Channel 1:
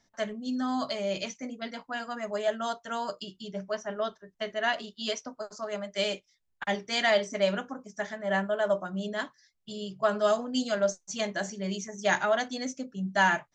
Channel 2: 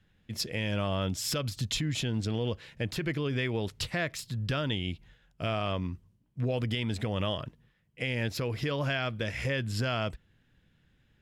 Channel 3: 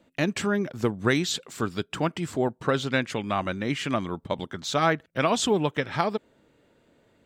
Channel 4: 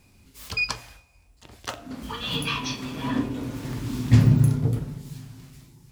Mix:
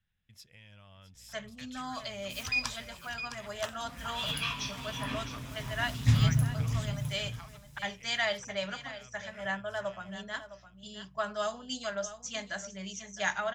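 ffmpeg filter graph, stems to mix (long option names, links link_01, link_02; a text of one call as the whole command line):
ffmpeg -i stem1.wav -i stem2.wav -i stem3.wav -i stem4.wav -filter_complex "[0:a]aeval=exprs='val(0)+0.00141*(sin(2*PI*60*n/s)+sin(2*PI*2*60*n/s)/2+sin(2*PI*3*60*n/s)/3+sin(2*PI*4*60*n/s)/4+sin(2*PI*5*60*n/s)/5)':channel_layout=same,adelay=1150,volume=-2dB,asplit=2[link_01][link_02];[link_02]volume=-13.5dB[link_03];[1:a]acompressor=threshold=-42dB:ratio=2,volume=-12.5dB,asplit=3[link_04][link_05][link_06];[link_05]volume=-14dB[link_07];[2:a]highpass=1100,adelay=1400,volume=-12dB[link_08];[3:a]adelay=1950,volume=-4dB,asplit=2[link_09][link_10];[link_10]volume=-10dB[link_11];[link_06]apad=whole_len=381622[link_12];[link_08][link_12]sidechaincompress=threshold=-54dB:ratio=8:attack=16:release=535[link_13];[link_03][link_07][link_11]amix=inputs=3:normalize=0,aecho=0:1:660:1[link_14];[link_01][link_04][link_13][link_09][link_14]amix=inputs=5:normalize=0,equalizer=frequency=350:width=0.77:gain=-14.5,bandreject=frequency=4400:width=12" out.wav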